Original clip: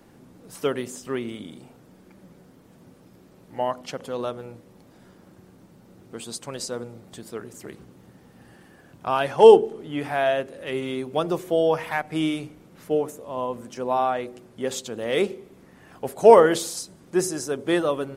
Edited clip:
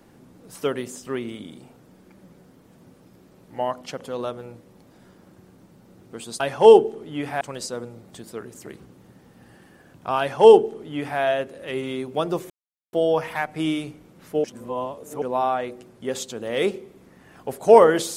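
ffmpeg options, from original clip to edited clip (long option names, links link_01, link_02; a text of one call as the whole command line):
ffmpeg -i in.wav -filter_complex "[0:a]asplit=6[link_01][link_02][link_03][link_04][link_05][link_06];[link_01]atrim=end=6.402[link_07];[link_02]atrim=start=9.178:end=10.192[link_08];[link_03]atrim=start=6.398:end=11.49,asetpts=PTS-STARTPTS,afade=type=out:start_time=5.088:duration=0.004:curve=hsin,apad=pad_dur=0.43[link_09];[link_04]atrim=start=11.49:end=13.002,asetpts=PTS-STARTPTS,afade=type=in:duration=0.004:curve=hsin[link_10];[link_05]atrim=start=12.998:end=13.782,asetpts=PTS-STARTPTS,areverse[link_11];[link_06]atrim=start=13.778[link_12];[link_07][link_08]acrossfade=duration=0.004:curve1=hsin:curve2=hsin[link_13];[link_09][link_10]concat=n=2:v=0:a=1[link_14];[link_13][link_14]acrossfade=duration=0.004:curve1=hsin:curve2=hsin[link_15];[link_15][link_11]acrossfade=duration=0.004:curve1=hsin:curve2=hsin[link_16];[link_16][link_12]acrossfade=duration=0.004:curve1=hsin:curve2=hsin" out.wav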